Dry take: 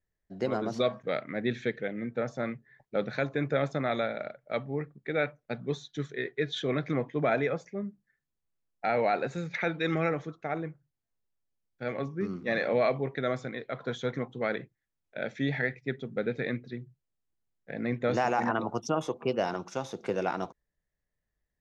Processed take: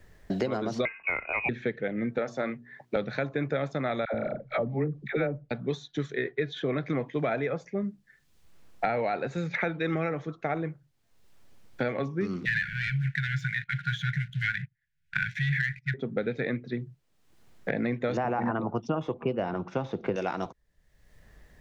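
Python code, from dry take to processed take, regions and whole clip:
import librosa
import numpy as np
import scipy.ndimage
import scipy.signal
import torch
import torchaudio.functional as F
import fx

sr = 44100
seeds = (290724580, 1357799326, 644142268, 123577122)

y = fx.chain(x, sr, fx.freq_invert(carrier_hz=2700),
    fx.band_squash(depth_pct=100), at=(0.85, 1.49))
y = fx.chain(y, sr, fx.highpass(hz=230.0, slope=12),
    fx.hum_notches(base_hz=60, count=6), at=(2.18, 2.96))
y = fx.chain(y, sr, fx.tilt_eq(slope=-2.5),
    fx.dispersion(late='lows', ms=84.0, hz=720.0),
    fx.resample_linear(factor=2), at=(4.05, 5.51))
y = fx.chain(y, sr, fx.leveller(passes=2),
    fx.brickwall_bandstop(low_hz=180.0, high_hz=1400.0), at=(12.45, 15.94))
y = fx.chain(y, sr, fx.lowpass(hz=1700.0, slope=12),
    fx.low_shelf(hz=260.0, db=8.5), at=(18.17, 20.16))
y = fx.high_shelf(y, sr, hz=5800.0, db=-11.0)
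y = fx.band_squash(y, sr, depth_pct=100)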